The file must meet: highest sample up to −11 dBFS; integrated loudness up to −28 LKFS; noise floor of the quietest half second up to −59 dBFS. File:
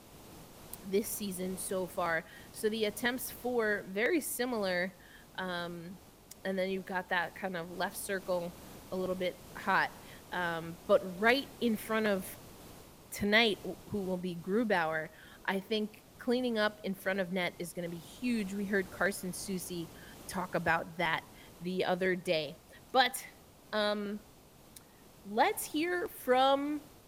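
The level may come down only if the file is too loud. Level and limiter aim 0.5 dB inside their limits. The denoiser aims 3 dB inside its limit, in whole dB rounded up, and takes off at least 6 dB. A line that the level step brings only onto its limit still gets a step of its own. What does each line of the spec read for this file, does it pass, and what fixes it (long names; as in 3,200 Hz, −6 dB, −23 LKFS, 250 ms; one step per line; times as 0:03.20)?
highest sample −13.0 dBFS: in spec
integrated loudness −33.5 LKFS: in spec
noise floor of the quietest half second −58 dBFS: out of spec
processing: broadband denoise 6 dB, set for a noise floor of −58 dBFS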